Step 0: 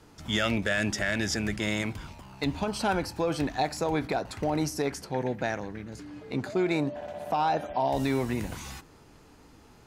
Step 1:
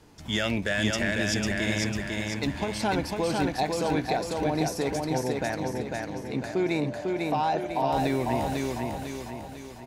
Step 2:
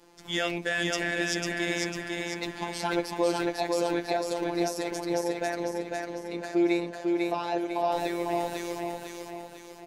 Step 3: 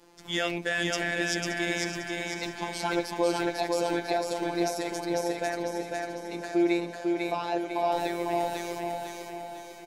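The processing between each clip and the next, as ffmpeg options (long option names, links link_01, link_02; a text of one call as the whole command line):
ffmpeg -i in.wav -filter_complex "[0:a]equalizer=frequency=1300:width=6.6:gain=-7,asplit=2[link_01][link_02];[link_02]aecho=0:1:499|998|1497|1996|2495|2994:0.708|0.34|0.163|0.0783|0.0376|0.018[link_03];[link_01][link_03]amix=inputs=2:normalize=0" out.wav
ffmpeg -i in.wav -af "lowshelf=frequency=240:width_type=q:width=1.5:gain=-8,afftfilt=real='hypot(re,im)*cos(PI*b)':imag='0':win_size=1024:overlap=0.75,volume=2dB" out.wav
ffmpeg -i in.wav -af "aecho=1:1:576|1152|1728|2304|2880:0.251|0.128|0.0653|0.0333|0.017" out.wav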